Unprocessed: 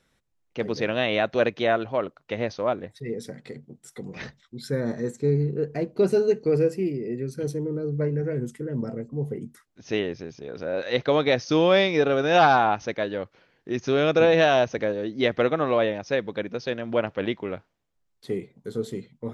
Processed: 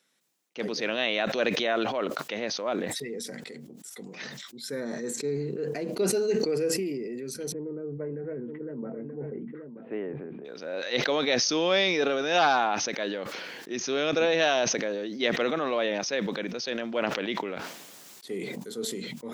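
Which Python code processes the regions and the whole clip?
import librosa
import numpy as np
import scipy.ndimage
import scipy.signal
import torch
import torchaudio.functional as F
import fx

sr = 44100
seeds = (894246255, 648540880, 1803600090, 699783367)

y = fx.chain(x, sr, fx.gaussian_blur(sigma=5.2),
    fx.echo_single(ms=930, db=-13.0),
    fx.band_squash(depth_pct=40), at=(7.52, 10.45))
y = scipy.signal.sosfilt(scipy.signal.butter(4, 190.0, 'highpass', fs=sr, output='sos'), y)
y = fx.high_shelf(y, sr, hz=2500.0, db=11.0)
y = fx.sustainer(y, sr, db_per_s=24.0)
y = y * 10.0 ** (-7.0 / 20.0)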